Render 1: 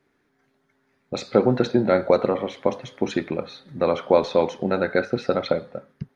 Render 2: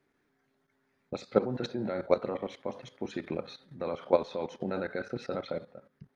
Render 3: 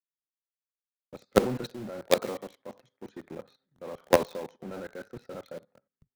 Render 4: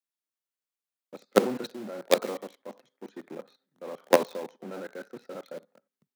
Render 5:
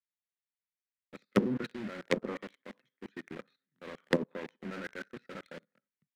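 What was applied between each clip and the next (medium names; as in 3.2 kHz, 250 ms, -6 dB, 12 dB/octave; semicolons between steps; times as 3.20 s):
level held to a coarse grid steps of 14 dB; trim -4.5 dB
dynamic bell 2.5 kHz, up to -5 dB, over -57 dBFS, Q 2; in parallel at -7.5 dB: companded quantiser 2-bit; on the sum: three bands expanded up and down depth 100%; trim -9.5 dB
high-pass 190 Hz 24 dB/octave; trim +1 dB
low-pass that closes with the level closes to 430 Hz, closed at -20.5 dBFS; FFT filter 130 Hz 0 dB, 760 Hz -17 dB, 1.9 kHz +2 dB, 6.4 kHz -14 dB; waveshaping leveller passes 2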